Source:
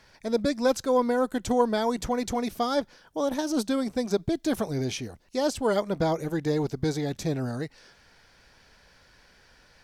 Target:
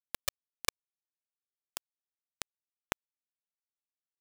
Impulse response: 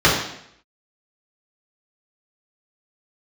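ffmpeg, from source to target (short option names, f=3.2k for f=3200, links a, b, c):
-af "acompressor=threshold=-37dB:ratio=2,acrusher=bits=3:mix=0:aa=0.000001,asetrate=103194,aresample=44100,volume=7.5dB"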